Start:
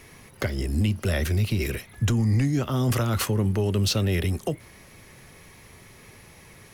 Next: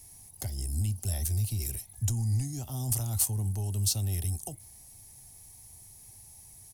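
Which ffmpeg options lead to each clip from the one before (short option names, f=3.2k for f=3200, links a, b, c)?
-af "firequalizer=gain_entry='entry(110,0);entry(160,-10);entry(270,-11);entry(510,-18);entry(770,-2);entry(1200,-20);entry(2400,-15);entry(4800,0);entry(8900,13);entry(15000,8)':delay=0.05:min_phase=1,volume=-5dB"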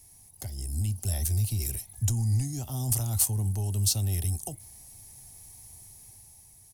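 -af "dynaudnorm=f=120:g=13:m=5.5dB,volume=-3dB"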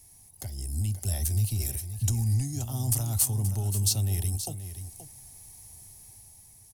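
-af "aecho=1:1:527:0.282"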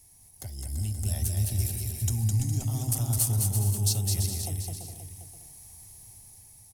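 -af "aecho=1:1:210|336|411.6|457|484.2:0.631|0.398|0.251|0.158|0.1,volume=-2dB"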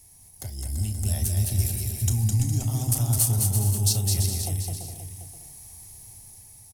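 -filter_complex "[0:a]asplit=2[a][b];[b]adelay=33,volume=-12dB[c];[a][c]amix=inputs=2:normalize=0,volume=3.5dB"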